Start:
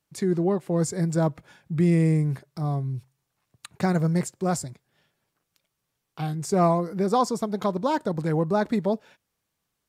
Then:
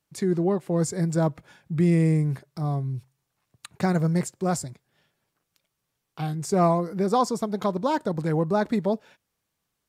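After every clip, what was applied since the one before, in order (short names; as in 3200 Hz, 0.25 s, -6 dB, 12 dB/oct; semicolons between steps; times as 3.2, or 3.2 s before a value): nothing audible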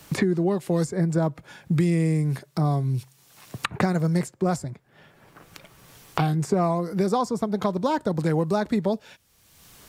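three-band squash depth 100%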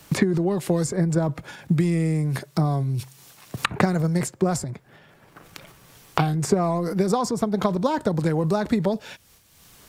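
transient shaper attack +5 dB, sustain +9 dB; gain -1 dB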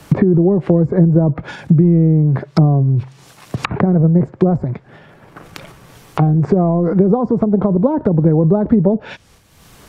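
treble ducked by the level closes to 530 Hz, closed at -19.5 dBFS; maximiser +12 dB; mismatched tape noise reduction decoder only; gain -1 dB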